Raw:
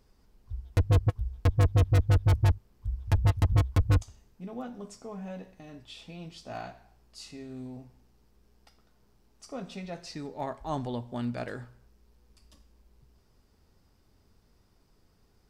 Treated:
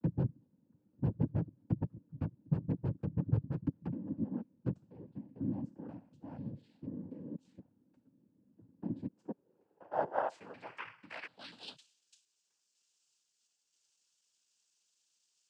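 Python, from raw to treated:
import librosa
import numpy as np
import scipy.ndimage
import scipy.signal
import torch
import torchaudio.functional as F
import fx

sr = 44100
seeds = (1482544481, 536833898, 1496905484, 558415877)

y = fx.block_reorder(x, sr, ms=245.0, group=4)
y = fx.filter_sweep_bandpass(y, sr, from_hz=200.0, to_hz=6200.0, start_s=8.97, end_s=12.2, q=3.4)
y = fx.noise_vocoder(y, sr, seeds[0], bands=8)
y = y * 10.0 ** (5.5 / 20.0)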